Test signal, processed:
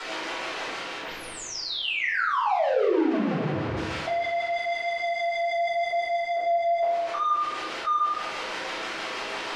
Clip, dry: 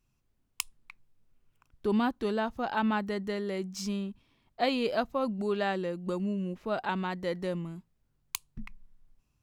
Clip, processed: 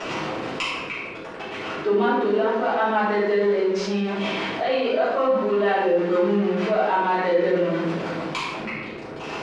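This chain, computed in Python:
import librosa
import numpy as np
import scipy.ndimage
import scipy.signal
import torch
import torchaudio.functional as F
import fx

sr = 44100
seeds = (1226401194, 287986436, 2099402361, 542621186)

y = x + 0.5 * 10.0 ** (-34.5 / 20.0) * np.sign(x)
y = scipy.signal.sosfilt(scipy.signal.butter(2, 350.0, 'highpass', fs=sr, output='sos'), y)
y = fx.tilt_eq(y, sr, slope=2.0)
y = fx.hum_notches(y, sr, base_hz=60, count=9)
y = fx.rider(y, sr, range_db=5, speed_s=0.5)
y = fx.rotary(y, sr, hz=6.3)
y = fx.mod_noise(y, sr, seeds[0], snr_db=33)
y = fx.spacing_loss(y, sr, db_at_10k=42)
y = fx.doubler(y, sr, ms=34.0, db=-10.5)
y = fx.room_shoebox(y, sr, seeds[1], volume_m3=230.0, walls='mixed', distance_m=4.6)
y = fx.env_flatten(y, sr, amount_pct=50)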